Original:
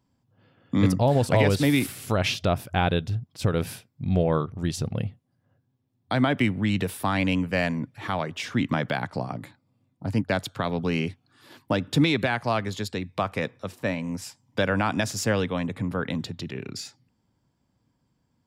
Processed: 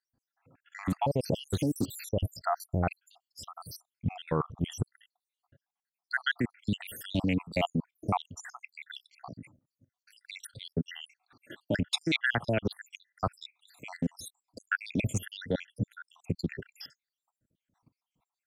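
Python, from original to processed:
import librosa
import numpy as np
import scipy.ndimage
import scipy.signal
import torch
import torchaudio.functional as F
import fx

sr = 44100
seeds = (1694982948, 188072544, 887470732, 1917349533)

y = fx.spec_dropout(x, sr, seeds[0], share_pct=79)
y = fx.level_steps(y, sr, step_db=17)
y = fx.doppler_dist(y, sr, depth_ms=0.23)
y = F.gain(torch.from_numpy(y), 7.5).numpy()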